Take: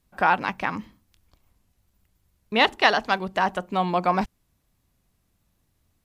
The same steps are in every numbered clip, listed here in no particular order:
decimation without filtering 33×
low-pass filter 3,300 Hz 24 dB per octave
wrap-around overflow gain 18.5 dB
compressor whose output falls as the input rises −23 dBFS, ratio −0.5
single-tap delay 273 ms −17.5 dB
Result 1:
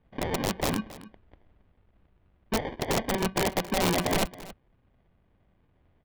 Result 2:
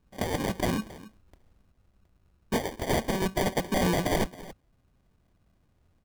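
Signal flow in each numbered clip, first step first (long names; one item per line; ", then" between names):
decimation without filtering, then compressor whose output falls as the input rises, then low-pass filter, then wrap-around overflow, then single-tap delay
compressor whose output falls as the input rises, then low-pass filter, then wrap-around overflow, then single-tap delay, then decimation without filtering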